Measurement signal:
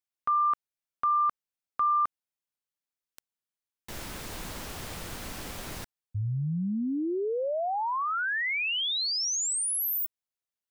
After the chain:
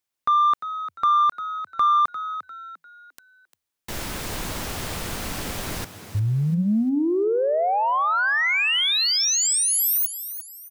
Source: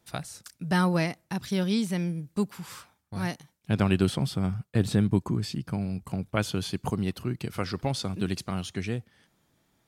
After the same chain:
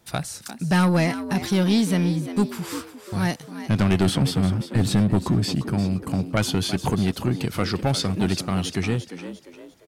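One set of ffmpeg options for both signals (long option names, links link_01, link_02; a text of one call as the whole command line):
ffmpeg -i in.wav -filter_complex "[0:a]asoftclip=type=tanh:threshold=-21.5dB,asplit=5[link_01][link_02][link_03][link_04][link_05];[link_02]adelay=349,afreqshift=80,volume=-12dB[link_06];[link_03]adelay=698,afreqshift=160,volume=-20.9dB[link_07];[link_04]adelay=1047,afreqshift=240,volume=-29.7dB[link_08];[link_05]adelay=1396,afreqshift=320,volume=-38.6dB[link_09];[link_01][link_06][link_07][link_08][link_09]amix=inputs=5:normalize=0,volume=8.5dB" out.wav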